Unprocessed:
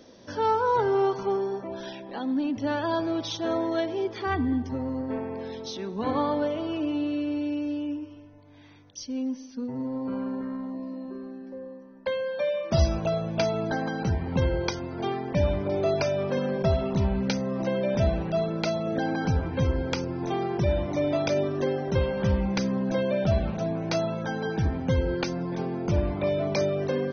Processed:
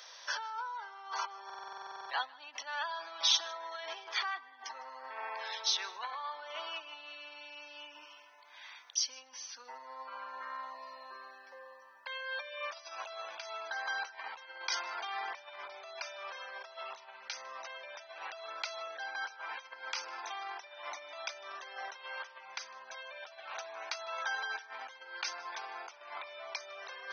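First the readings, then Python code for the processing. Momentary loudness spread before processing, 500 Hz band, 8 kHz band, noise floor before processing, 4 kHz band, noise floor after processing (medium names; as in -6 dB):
9 LU, -22.5 dB, no reading, -47 dBFS, +1.5 dB, -56 dBFS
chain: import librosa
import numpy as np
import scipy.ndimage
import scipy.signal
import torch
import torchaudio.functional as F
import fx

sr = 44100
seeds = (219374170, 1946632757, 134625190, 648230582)

y = fx.over_compress(x, sr, threshold_db=-33.0, ratio=-1.0)
y = scipy.signal.sosfilt(scipy.signal.butter(4, 980.0, 'highpass', fs=sr, output='sos'), y)
y = y + 10.0 ** (-22.5 / 20.0) * np.pad(y, (int(153 * sr / 1000.0), 0))[:len(y)]
y = fx.buffer_glitch(y, sr, at_s=(1.45,), block=2048, repeats=13)
y = F.gain(torch.from_numpy(y), 3.0).numpy()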